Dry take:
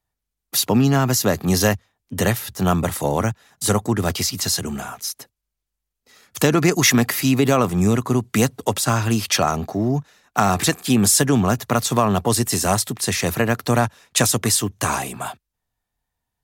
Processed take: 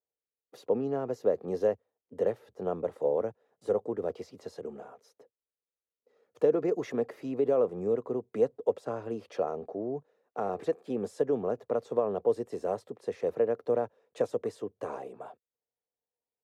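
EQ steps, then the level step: band-pass filter 480 Hz, Q 5.5; 0.0 dB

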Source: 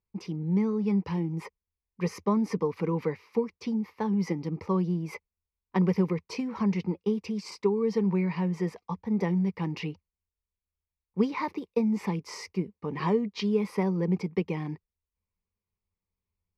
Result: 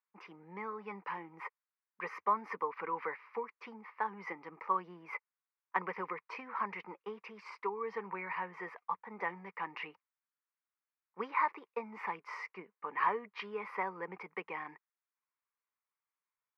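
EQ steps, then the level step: resonant high-pass 1.4 kHz, resonance Q 1.6; distance through air 360 m; peaking EQ 3.9 kHz -14.5 dB 1.5 oct; +8.0 dB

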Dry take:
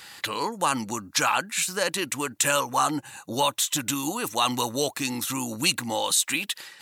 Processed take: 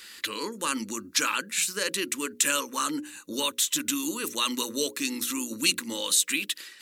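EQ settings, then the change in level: hum notches 60/120/180/240/300/360/420/480/540 Hz; static phaser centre 310 Hz, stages 4; 0.0 dB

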